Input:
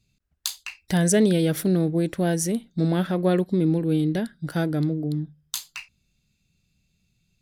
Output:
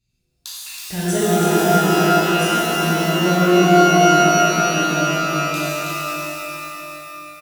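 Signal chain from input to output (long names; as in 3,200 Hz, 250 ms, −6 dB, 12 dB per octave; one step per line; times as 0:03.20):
repeating echo 324 ms, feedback 45%, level −5.5 dB
reverb with rising layers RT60 2.9 s, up +12 semitones, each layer −2 dB, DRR −9 dB
level −8.5 dB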